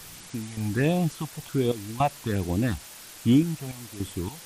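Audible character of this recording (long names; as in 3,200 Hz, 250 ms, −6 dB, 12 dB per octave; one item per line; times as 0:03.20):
sample-and-hold tremolo, depth 90%
phaser sweep stages 6, 1.3 Hz, lowest notch 310–1,700 Hz
a quantiser's noise floor 8 bits, dither triangular
MP3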